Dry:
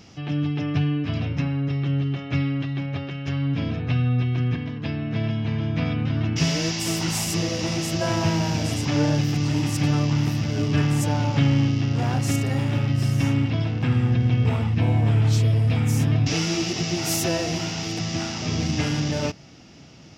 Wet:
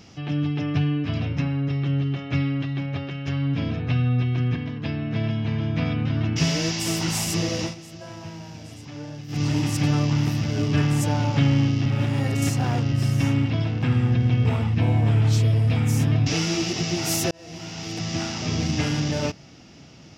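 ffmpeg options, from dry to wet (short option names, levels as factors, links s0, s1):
-filter_complex "[0:a]asplit=6[s0][s1][s2][s3][s4][s5];[s0]atrim=end=7.75,asetpts=PTS-STARTPTS,afade=t=out:st=7.62:d=0.13:silence=0.16788[s6];[s1]atrim=start=7.75:end=9.28,asetpts=PTS-STARTPTS,volume=0.168[s7];[s2]atrim=start=9.28:end=11.862,asetpts=PTS-STARTPTS,afade=t=in:d=0.13:silence=0.16788[s8];[s3]atrim=start=11.858:end=12.922,asetpts=PTS-STARTPTS,areverse[s9];[s4]atrim=start=12.918:end=17.31,asetpts=PTS-STARTPTS,afade=t=out:st=4.388:d=0.004:c=hsin[s10];[s5]atrim=start=17.31,asetpts=PTS-STARTPTS,afade=t=in:d=0.86[s11];[s6][s7][s8]concat=n=3:v=0:a=1[s12];[s12][s9]acrossfade=d=0.004:c1=hsin:c2=hsin[s13];[s10][s11]concat=n=2:v=0:a=1[s14];[s13][s14]acrossfade=d=0.004:c1=hsin:c2=hsin"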